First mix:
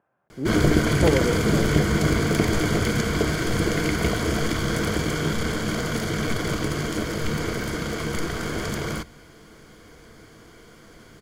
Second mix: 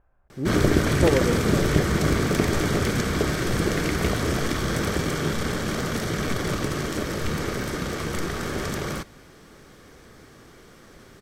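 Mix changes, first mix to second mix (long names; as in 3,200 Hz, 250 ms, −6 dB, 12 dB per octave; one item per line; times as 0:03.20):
speech: remove high-pass filter 140 Hz 24 dB per octave
background: remove EQ curve with evenly spaced ripples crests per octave 1.8, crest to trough 7 dB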